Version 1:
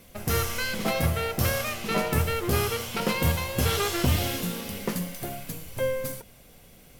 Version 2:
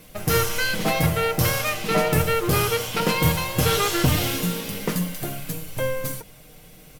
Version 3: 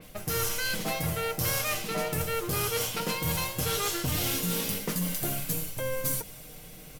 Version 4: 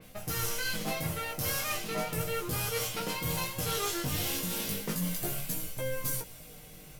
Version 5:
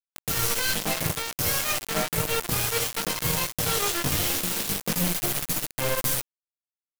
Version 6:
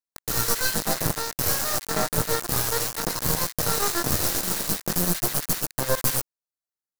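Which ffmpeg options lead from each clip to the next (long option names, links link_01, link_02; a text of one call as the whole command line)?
ffmpeg -i in.wav -af "aecho=1:1:6.5:0.51,volume=4dB" out.wav
ffmpeg -i in.wav -af "areverse,acompressor=threshold=-28dB:ratio=6,areverse,adynamicequalizer=threshold=0.00282:dfrequency=4200:dqfactor=0.7:tfrequency=4200:tqfactor=0.7:attack=5:release=100:ratio=0.375:range=3:mode=boostabove:tftype=highshelf" out.wav
ffmpeg -i in.wav -af "flanger=delay=15.5:depth=5.4:speed=0.35" out.wav
ffmpeg -i in.wav -af "acrusher=bits=4:mix=0:aa=0.000001,volume=5.5dB" out.wav
ffmpeg -i in.wav -af "asuperstop=centerf=2700:order=8:qfactor=1.5,aeval=exprs='0.282*(cos(1*acos(clip(val(0)/0.282,-1,1)))-cos(1*PI/2))+0.0562*(cos(6*acos(clip(val(0)/0.282,-1,1)))-cos(6*PI/2))':channel_layout=same" out.wav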